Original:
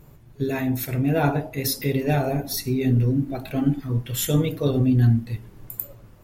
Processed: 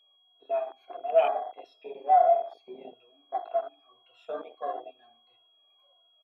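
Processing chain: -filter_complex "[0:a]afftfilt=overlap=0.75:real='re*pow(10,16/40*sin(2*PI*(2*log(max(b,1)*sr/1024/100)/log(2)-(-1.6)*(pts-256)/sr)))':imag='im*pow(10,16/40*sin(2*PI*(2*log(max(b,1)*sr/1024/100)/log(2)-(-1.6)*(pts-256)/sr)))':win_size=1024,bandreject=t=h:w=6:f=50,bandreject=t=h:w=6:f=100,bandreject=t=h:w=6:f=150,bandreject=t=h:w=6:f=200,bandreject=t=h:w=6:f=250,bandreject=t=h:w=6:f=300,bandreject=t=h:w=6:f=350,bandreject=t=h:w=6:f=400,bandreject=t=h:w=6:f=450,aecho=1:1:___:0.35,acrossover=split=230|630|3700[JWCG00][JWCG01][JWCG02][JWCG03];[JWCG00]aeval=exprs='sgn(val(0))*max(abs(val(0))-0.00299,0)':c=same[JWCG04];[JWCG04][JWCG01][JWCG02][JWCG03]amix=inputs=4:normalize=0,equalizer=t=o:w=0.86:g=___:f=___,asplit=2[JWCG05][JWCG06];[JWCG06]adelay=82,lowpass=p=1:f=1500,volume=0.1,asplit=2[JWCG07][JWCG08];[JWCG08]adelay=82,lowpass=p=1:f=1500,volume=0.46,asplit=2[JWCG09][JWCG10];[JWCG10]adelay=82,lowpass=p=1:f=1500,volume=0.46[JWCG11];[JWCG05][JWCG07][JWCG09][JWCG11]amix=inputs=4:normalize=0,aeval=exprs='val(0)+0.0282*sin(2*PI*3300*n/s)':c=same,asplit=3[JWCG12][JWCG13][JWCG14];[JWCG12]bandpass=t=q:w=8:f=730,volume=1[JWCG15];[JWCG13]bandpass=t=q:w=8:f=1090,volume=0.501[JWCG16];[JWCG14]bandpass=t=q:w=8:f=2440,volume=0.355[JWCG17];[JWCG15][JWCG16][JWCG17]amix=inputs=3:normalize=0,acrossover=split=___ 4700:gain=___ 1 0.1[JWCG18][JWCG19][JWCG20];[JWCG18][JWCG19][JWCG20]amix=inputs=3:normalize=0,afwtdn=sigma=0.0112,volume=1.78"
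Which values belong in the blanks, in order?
2.9, -7.5, 170, 400, 0.0708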